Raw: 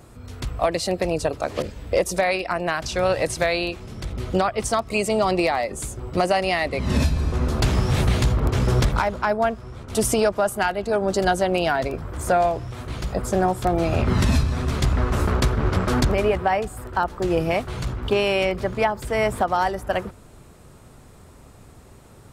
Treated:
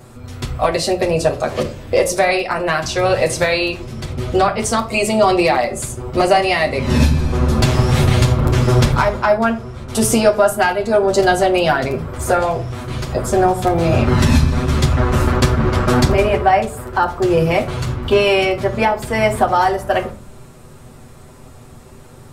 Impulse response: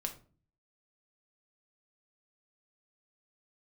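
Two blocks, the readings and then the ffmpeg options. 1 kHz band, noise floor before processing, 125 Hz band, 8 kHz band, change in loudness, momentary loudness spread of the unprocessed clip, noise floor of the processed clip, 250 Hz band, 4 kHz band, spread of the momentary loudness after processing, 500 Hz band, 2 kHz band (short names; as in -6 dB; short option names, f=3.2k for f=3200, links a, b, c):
+6.5 dB, -47 dBFS, +7.0 dB, +6.5 dB, +6.5 dB, 8 LU, -40 dBFS, +7.0 dB, +6.5 dB, 8 LU, +6.5 dB, +6.5 dB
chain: -filter_complex "[0:a]asplit=2[a][b];[1:a]atrim=start_sample=2205,adelay=8[c];[b][c]afir=irnorm=-1:irlink=0,volume=0dB[d];[a][d]amix=inputs=2:normalize=0,volume=3.5dB"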